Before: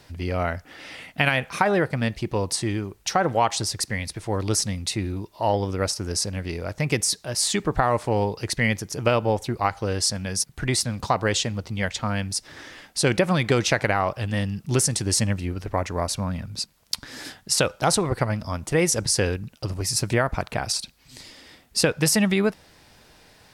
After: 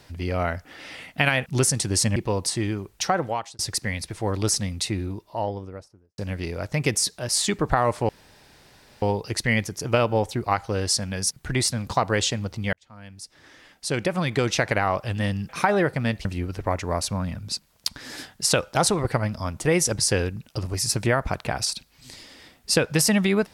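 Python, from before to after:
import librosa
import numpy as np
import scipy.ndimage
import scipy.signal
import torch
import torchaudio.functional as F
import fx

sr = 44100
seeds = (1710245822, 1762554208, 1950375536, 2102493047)

y = fx.studio_fade_out(x, sr, start_s=4.88, length_s=1.36)
y = fx.edit(y, sr, fx.swap(start_s=1.46, length_s=0.76, other_s=14.62, other_length_s=0.7),
    fx.fade_out_span(start_s=3.11, length_s=0.54),
    fx.insert_room_tone(at_s=8.15, length_s=0.93),
    fx.fade_in_span(start_s=11.86, length_s=2.2), tone=tone)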